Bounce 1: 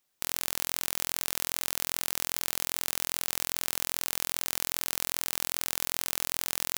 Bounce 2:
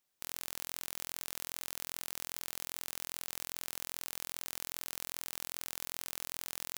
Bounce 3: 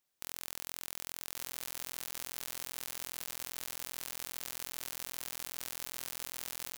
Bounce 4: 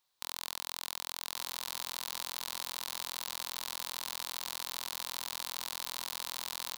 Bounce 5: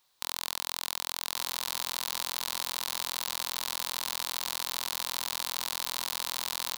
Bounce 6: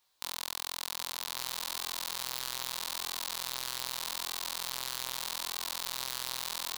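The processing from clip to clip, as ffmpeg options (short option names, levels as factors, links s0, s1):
-af "alimiter=limit=0.422:level=0:latency=1,volume=0.562"
-af "aecho=1:1:1146:0.473,volume=0.891"
-af "equalizer=f=250:t=o:w=0.67:g=-5,equalizer=f=1000:t=o:w=0.67:g=10,equalizer=f=4000:t=o:w=0.67:g=10"
-af "alimiter=limit=0.178:level=0:latency=1,volume=2.66"
-af "flanger=delay=15.5:depth=5.5:speed=0.81"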